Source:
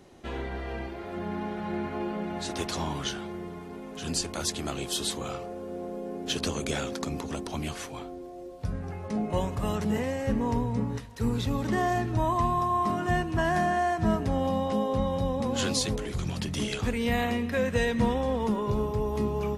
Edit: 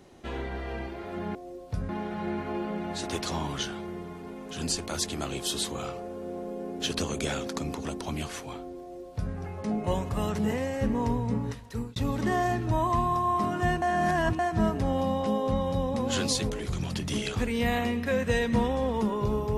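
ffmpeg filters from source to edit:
ffmpeg -i in.wav -filter_complex "[0:a]asplit=6[link_01][link_02][link_03][link_04][link_05][link_06];[link_01]atrim=end=1.352[link_07];[link_02]atrim=start=8.258:end=8.802[link_08];[link_03]atrim=start=1.348:end=11.42,asetpts=PTS-STARTPTS,afade=type=out:start_time=9.752:duration=0.32[link_09];[link_04]atrim=start=11.42:end=13.282,asetpts=PTS-STARTPTS,afade=type=in:duration=0.004:curve=hsin[link_10];[link_05]atrim=start=13.278:end=13.852,asetpts=PTS-STARTPTS,areverse[link_11];[link_06]atrim=start=13.848[link_12];[link_07][link_08]acrossfade=duration=0.004:curve1=hsin:curve2=hsin[link_13];[link_09][link_10]concat=n=2:v=0:a=1[link_14];[link_13][link_14]acrossfade=duration=0.004:curve1=hsin:curve2=hsin[link_15];[link_15][link_11]acrossfade=duration=0.004:curve1=hsin:curve2=hsin[link_16];[link_16][link_12]acrossfade=duration=0.004:curve1=hsin:curve2=hsin" out.wav

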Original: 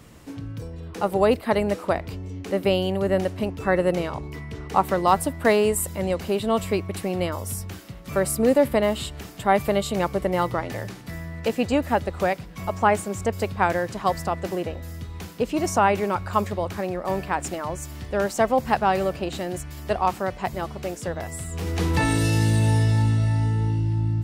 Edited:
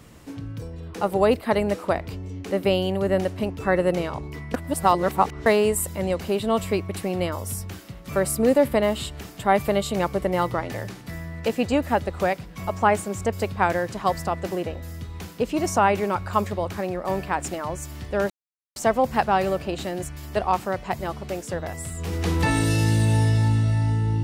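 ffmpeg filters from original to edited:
ffmpeg -i in.wav -filter_complex "[0:a]asplit=4[link_01][link_02][link_03][link_04];[link_01]atrim=end=4.542[link_05];[link_02]atrim=start=4.538:end=5.462,asetpts=PTS-STARTPTS,areverse[link_06];[link_03]atrim=start=5.458:end=18.3,asetpts=PTS-STARTPTS,afade=type=out:start_time=12.838:duration=0.004:curve=hsin,apad=pad_dur=0.46[link_07];[link_04]atrim=start=18.3,asetpts=PTS-STARTPTS,afade=type=in:duration=0.004:curve=hsin[link_08];[link_05][link_06]acrossfade=duration=0.004:curve1=hsin:curve2=hsin[link_09];[link_07][link_08]concat=n=2:v=0:a=1[link_10];[link_09][link_10]acrossfade=duration=0.004:curve1=hsin:curve2=hsin" out.wav

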